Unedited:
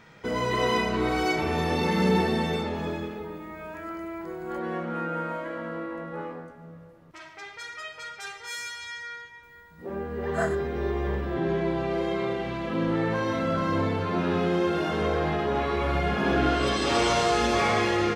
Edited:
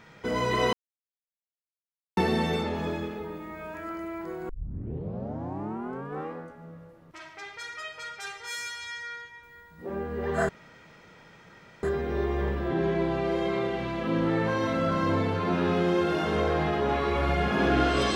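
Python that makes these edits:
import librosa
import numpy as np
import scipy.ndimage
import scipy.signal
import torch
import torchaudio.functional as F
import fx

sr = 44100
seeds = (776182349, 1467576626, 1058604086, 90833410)

y = fx.edit(x, sr, fx.silence(start_s=0.73, length_s=1.44),
    fx.tape_start(start_s=4.49, length_s=1.85),
    fx.insert_room_tone(at_s=10.49, length_s=1.34), tone=tone)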